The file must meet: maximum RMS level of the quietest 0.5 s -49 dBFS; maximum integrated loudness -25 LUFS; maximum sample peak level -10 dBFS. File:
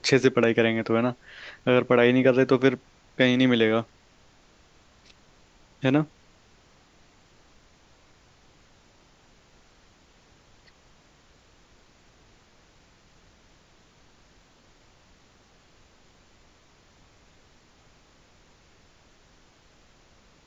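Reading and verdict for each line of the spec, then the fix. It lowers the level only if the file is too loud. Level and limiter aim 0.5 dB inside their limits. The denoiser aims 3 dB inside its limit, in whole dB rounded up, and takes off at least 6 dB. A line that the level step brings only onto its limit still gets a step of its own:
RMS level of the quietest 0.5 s -58 dBFS: pass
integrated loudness -22.5 LUFS: fail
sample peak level -5.0 dBFS: fail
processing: trim -3 dB; peak limiter -10.5 dBFS

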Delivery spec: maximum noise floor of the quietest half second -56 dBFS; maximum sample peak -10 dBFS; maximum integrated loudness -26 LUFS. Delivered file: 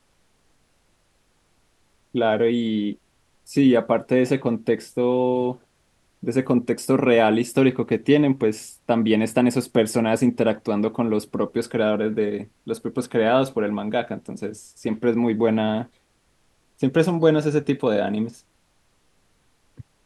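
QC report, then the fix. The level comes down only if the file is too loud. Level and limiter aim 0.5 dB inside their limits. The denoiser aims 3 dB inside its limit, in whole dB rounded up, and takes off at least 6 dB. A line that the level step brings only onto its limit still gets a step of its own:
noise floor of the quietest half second -64 dBFS: pass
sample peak -5.0 dBFS: fail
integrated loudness -22.0 LUFS: fail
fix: trim -4.5 dB; peak limiter -10.5 dBFS

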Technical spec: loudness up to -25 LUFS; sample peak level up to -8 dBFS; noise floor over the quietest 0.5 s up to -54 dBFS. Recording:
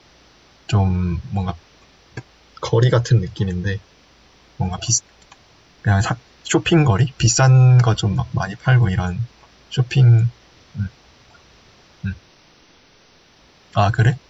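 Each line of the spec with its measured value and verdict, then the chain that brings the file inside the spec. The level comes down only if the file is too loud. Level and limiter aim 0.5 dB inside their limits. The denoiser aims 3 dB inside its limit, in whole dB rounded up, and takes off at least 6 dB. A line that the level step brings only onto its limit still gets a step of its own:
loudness -18.0 LUFS: fail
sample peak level -5.5 dBFS: fail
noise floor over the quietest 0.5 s -52 dBFS: fail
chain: trim -7.5 dB

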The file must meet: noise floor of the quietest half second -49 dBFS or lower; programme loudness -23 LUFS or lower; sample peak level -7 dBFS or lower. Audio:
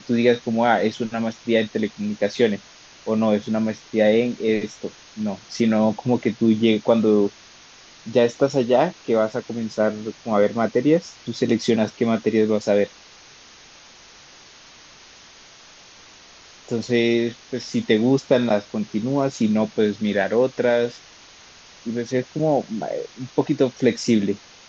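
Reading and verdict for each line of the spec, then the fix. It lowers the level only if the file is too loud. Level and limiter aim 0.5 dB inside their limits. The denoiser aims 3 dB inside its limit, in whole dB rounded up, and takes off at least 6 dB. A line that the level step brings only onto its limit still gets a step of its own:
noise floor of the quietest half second -47 dBFS: fail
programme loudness -21.5 LUFS: fail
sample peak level -4.5 dBFS: fail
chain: noise reduction 6 dB, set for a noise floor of -47 dBFS; trim -2 dB; peak limiter -7.5 dBFS

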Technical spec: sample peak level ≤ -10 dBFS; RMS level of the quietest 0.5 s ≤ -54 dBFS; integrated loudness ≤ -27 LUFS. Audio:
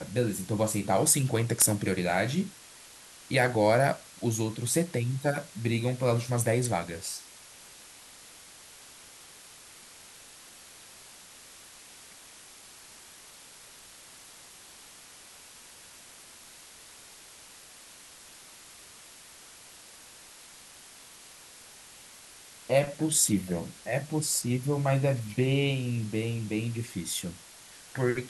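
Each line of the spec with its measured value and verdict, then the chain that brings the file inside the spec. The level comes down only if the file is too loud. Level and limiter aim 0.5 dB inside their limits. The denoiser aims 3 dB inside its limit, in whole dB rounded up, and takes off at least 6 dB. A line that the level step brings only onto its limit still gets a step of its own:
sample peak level -8.0 dBFS: fail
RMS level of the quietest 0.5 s -51 dBFS: fail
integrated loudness -28.0 LUFS: pass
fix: noise reduction 6 dB, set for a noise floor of -51 dBFS; peak limiter -10.5 dBFS

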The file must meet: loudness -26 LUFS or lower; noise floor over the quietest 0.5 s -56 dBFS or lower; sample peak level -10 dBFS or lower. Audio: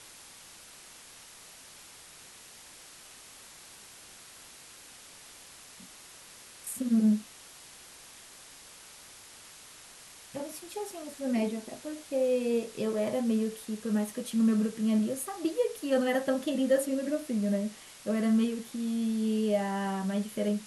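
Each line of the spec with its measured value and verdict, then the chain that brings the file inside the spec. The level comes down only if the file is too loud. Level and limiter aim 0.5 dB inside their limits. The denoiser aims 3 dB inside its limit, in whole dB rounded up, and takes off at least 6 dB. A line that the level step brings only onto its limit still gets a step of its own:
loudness -30.5 LUFS: pass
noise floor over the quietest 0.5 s -51 dBFS: fail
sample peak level -15.0 dBFS: pass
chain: noise reduction 8 dB, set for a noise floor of -51 dBFS

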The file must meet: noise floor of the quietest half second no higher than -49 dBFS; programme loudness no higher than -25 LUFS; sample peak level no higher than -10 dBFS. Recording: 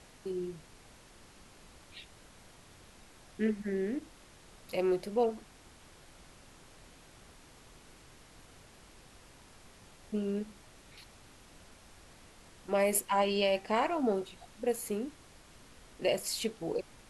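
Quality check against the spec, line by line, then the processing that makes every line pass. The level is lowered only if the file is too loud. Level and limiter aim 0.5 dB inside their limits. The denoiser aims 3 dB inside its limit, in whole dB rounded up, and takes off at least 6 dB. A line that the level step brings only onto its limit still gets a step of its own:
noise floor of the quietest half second -56 dBFS: pass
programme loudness -33.0 LUFS: pass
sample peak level -16.0 dBFS: pass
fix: none needed

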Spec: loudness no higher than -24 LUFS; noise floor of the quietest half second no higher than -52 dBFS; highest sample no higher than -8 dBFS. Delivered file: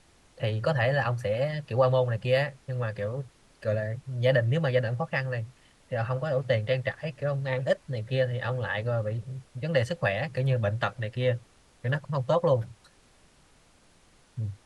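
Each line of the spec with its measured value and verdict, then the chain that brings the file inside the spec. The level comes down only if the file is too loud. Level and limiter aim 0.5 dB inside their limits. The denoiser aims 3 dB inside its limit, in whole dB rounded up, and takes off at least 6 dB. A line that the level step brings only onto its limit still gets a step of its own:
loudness -28.5 LUFS: pass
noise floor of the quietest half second -60 dBFS: pass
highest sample -10.5 dBFS: pass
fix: none needed

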